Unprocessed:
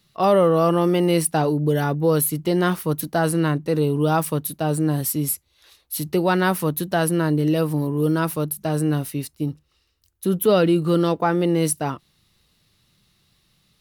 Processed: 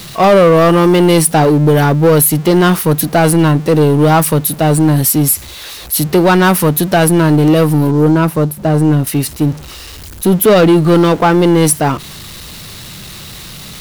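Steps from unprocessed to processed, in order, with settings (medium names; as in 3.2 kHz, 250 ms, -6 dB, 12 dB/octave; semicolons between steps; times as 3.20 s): jump at every zero crossing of -34 dBFS; 7.91–9.07 s: treble shelf 2.2 kHz -11.5 dB; waveshaping leveller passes 2; trim +4.5 dB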